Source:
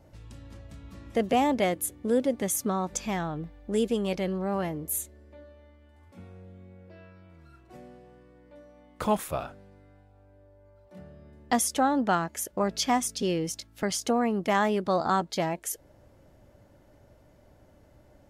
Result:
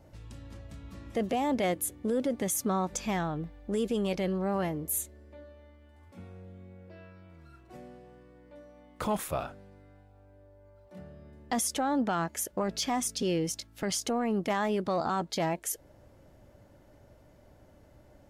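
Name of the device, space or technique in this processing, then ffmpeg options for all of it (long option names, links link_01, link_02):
soft clipper into limiter: -af "asoftclip=type=tanh:threshold=-13.5dB,alimiter=limit=-21.5dB:level=0:latency=1:release=16"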